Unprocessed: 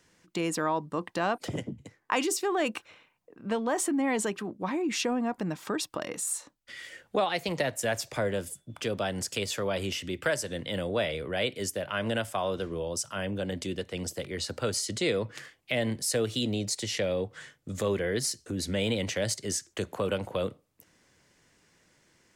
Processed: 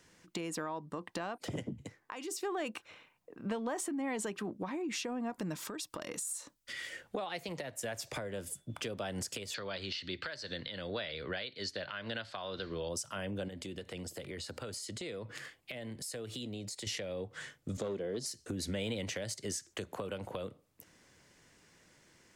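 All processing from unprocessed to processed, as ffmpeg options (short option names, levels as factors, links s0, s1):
-filter_complex "[0:a]asettb=1/sr,asplit=3[s0][s1][s2];[s0]atrim=end=5.304[s3];[s1]atrim=start=5.3:end=6.73,asetpts=PTS-STARTPTS,afade=t=in:d=0.004:c=qsin,afade=t=out:st=1.426:d=0.004:c=qsin,bass=f=250:g=0,treble=f=4000:g=6,bandreject=f=780:w=8.7,acompressor=threshold=0.0282:ratio=2:attack=3.2:release=140:knee=1:detection=peak[s4];[s2]atrim=start=6.726[s5];[s3][s4]acrossfade=d=0.004:c1=hsin:c2=qsin[s6];[s6][s5]acrossfade=d=0.004:c1=qsin:c2=hsin,asettb=1/sr,asplit=3[s7][s8][s9];[s7]atrim=end=9.544[s10];[s8]atrim=start=9.54:end=12.89,asetpts=PTS-STARTPTS,afade=t=in:d=0.004:c=qsin,afade=t=out:st=3.346:d=0.004:c=qsin,lowpass=f=4300:t=q:w=11,equalizer=f=1600:t=o:w=0.89:g=7[s11];[s9]atrim=start=12.886[s12];[s10][s11]acrossfade=d=0.004:c1=hsin:c2=qsin[s13];[s13][s12]acrossfade=d=0.004:c1=qsin:c2=hsin,asettb=1/sr,asplit=3[s14][s15][s16];[s14]atrim=end=13.484[s17];[s15]atrim=start=13.48:end=16.87,asetpts=PTS-STARTPTS,afade=t=in:d=0.004:c=qsin,afade=t=out:st=3.386:d=0.004:c=qsin,acompressor=threshold=0.00891:ratio=5:attack=3.2:release=140:knee=1:detection=peak,bandreject=f=5900:w=13[s18];[s16]atrim=start=16.866[s19];[s17][s18]acrossfade=d=0.004:c1=hsin:c2=qsin[s20];[s20][s19]acrossfade=d=0.004:c1=qsin:c2=hsin,asettb=1/sr,asplit=3[s21][s22][s23];[s21]atrim=end=17.774[s24];[s22]atrim=start=17.77:end=18.26,asetpts=PTS-STARTPTS,afade=t=in:d=0.004:c=qsin,afade=t=out:st=0.486:d=0.004:c=qsin,highpass=170,lowpass=5300,equalizer=f=1900:t=o:w=1.2:g=-14.5,volume=15.8,asoftclip=hard,volume=0.0631[s25];[s23]atrim=start=18.256[s26];[s24][s25]acrossfade=d=0.004:c1=hsin:c2=qsin[s27];[s27][s26]acrossfade=d=0.004:c1=qsin:c2=hsin,acompressor=threshold=0.0178:ratio=6,alimiter=level_in=1.5:limit=0.0631:level=0:latency=1:release=350,volume=0.668,volume=1.12"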